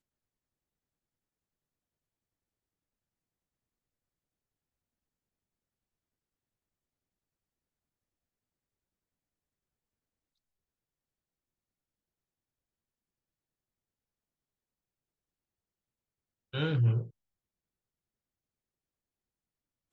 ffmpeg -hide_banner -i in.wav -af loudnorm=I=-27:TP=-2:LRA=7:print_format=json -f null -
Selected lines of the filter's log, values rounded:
"input_i" : "-30.6",
"input_tp" : "-18.0",
"input_lra" : "18.8",
"input_thresh" : "-42.7",